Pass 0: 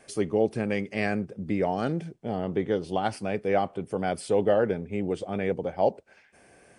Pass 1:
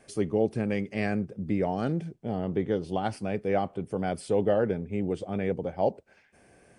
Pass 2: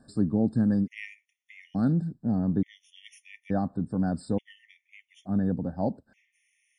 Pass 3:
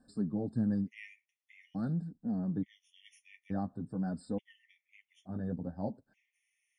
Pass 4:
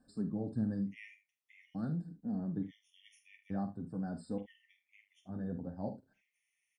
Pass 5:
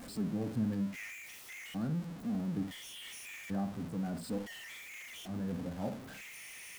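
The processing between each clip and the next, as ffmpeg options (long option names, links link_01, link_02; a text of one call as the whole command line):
ffmpeg -i in.wav -af "lowshelf=frequency=320:gain=6.5,volume=-4dB" out.wav
ffmpeg -i in.wav -af "lowshelf=frequency=320:width_type=q:width=3:gain=6.5,afftfilt=real='re*gt(sin(2*PI*0.57*pts/sr)*(1-2*mod(floor(b*sr/1024/1800),2)),0)':imag='im*gt(sin(2*PI*0.57*pts/sr)*(1-2*mod(floor(b*sr/1024/1800),2)),0)':win_size=1024:overlap=0.75,volume=-3dB" out.wav
ffmpeg -i in.wav -af "flanger=delay=3.9:depth=8.3:regen=-22:speed=0.46:shape=sinusoidal,volume=-5.5dB" out.wav
ffmpeg -i in.wav -af "aecho=1:1:46|76:0.316|0.178,volume=-3dB" out.wav
ffmpeg -i in.wav -af "aeval=exprs='val(0)+0.5*0.0075*sgn(val(0))':channel_layout=same" out.wav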